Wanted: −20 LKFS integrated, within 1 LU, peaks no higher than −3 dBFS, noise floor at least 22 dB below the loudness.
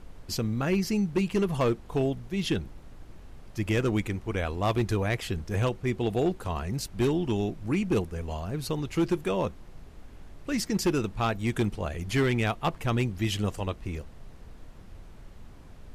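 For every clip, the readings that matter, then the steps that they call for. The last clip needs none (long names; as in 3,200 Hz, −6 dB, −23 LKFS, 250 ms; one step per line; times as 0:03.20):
share of clipped samples 1.0%; peaks flattened at −19.0 dBFS; background noise floor −48 dBFS; target noise floor −51 dBFS; integrated loudness −29.0 LKFS; sample peak −19.0 dBFS; target loudness −20.0 LKFS
→ clipped peaks rebuilt −19 dBFS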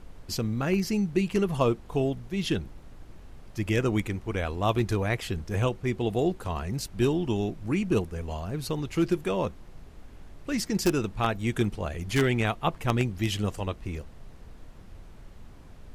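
share of clipped samples 0.0%; background noise floor −48 dBFS; target noise floor −51 dBFS
→ noise reduction from a noise print 6 dB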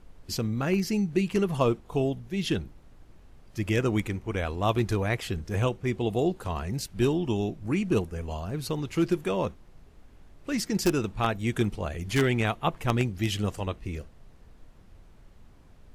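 background noise floor −53 dBFS; integrated loudness −28.5 LKFS; sample peak −10.0 dBFS; target loudness −20.0 LKFS
→ level +8.5 dB
brickwall limiter −3 dBFS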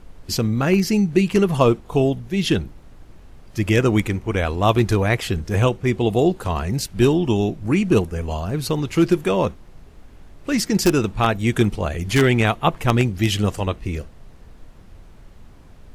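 integrated loudness −20.0 LKFS; sample peak −3.0 dBFS; background noise floor −45 dBFS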